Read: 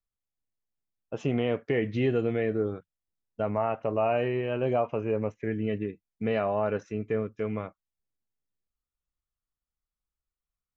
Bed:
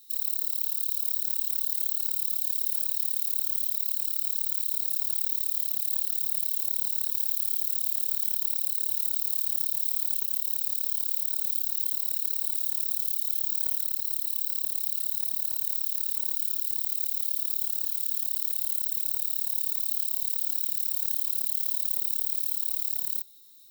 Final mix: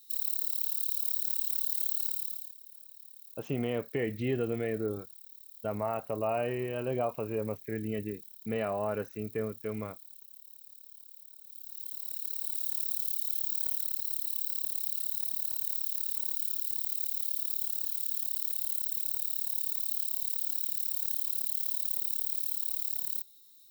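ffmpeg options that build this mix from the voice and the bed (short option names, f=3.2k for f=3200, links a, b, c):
-filter_complex "[0:a]adelay=2250,volume=-5dB[a];[1:a]volume=16dB,afade=t=out:st=2.03:d=0.51:silence=0.1,afade=t=in:st=11.47:d=1.28:silence=0.112202[b];[a][b]amix=inputs=2:normalize=0"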